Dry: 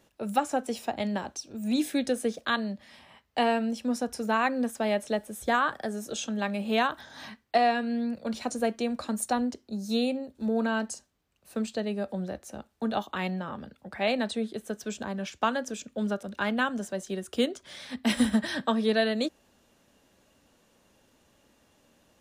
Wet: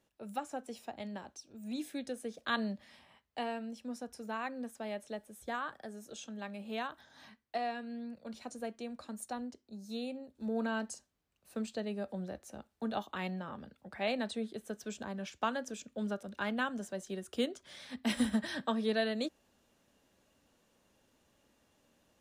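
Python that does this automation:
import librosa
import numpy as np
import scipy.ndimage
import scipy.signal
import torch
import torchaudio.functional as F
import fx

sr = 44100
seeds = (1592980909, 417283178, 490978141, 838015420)

y = fx.gain(x, sr, db=fx.line((2.3, -12.5), (2.62, -3.0), (3.47, -13.0), (10.0, -13.0), (10.6, -7.0)))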